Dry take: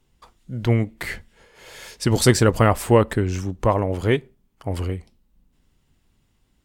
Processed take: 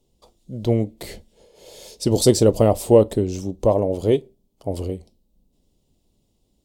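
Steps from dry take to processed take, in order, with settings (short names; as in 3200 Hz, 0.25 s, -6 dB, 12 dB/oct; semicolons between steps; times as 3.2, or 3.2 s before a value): EQ curve 120 Hz 0 dB, 590 Hz +8 dB, 1600 Hz -17 dB, 3800 Hz +3 dB; on a send: reverb, pre-delay 5 ms, DRR 18 dB; on the sum: gain -3 dB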